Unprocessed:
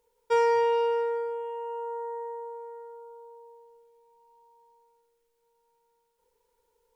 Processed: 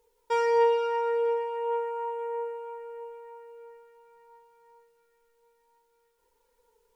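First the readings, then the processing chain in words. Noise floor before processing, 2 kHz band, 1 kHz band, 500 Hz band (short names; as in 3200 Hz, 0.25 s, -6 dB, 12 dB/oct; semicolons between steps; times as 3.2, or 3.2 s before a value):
-75 dBFS, 0.0 dB, +0.5 dB, +1.0 dB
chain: in parallel at +1 dB: limiter -25 dBFS, peak gain reduction 9 dB; on the sum: flange 0.33 Hz, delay 2.3 ms, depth 4.8 ms, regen +39%; narrowing echo 0.467 s, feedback 69%, band-pass 1800 Hz, level -11.5 dB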